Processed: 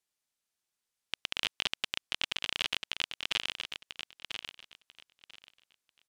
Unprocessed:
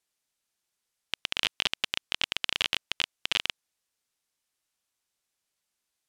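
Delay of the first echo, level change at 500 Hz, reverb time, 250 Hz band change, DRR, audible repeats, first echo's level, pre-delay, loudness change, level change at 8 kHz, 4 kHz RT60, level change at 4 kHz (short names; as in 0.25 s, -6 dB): 0.992 s, -4.0 dB, none, -4.0 dB, none, 2, -8.0 dB, none, -5.0 dB, -4.0 dB, none, -4.0 dB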